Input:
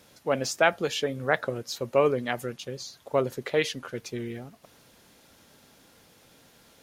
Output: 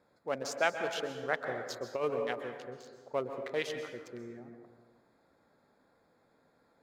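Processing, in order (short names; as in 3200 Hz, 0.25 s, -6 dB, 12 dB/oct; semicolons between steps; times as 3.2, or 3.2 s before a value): Wiener smoothing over 15 samples; plate-style reverb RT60 1.5 s, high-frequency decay 0.45×, pre-delay 0.115 s, DRR 6.5 dB; 1.49–2.05 negative-ratio compressor -22 dBFS, ratio -0.5; low shelf 240 Hz -10 dB; gain -7 dB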